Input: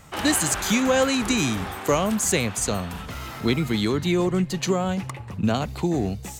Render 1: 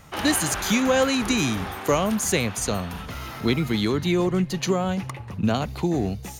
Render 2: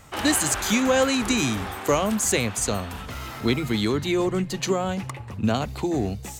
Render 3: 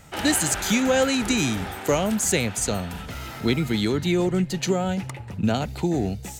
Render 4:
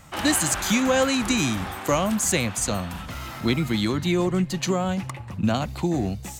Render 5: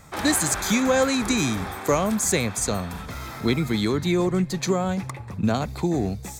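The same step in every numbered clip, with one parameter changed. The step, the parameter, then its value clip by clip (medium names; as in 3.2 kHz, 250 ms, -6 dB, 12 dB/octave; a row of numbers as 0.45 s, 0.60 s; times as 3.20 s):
band-stop, frequency: 7.8 kHz, 170 Hz, 1.1 kHz, 430 Hz, 2.9 kHz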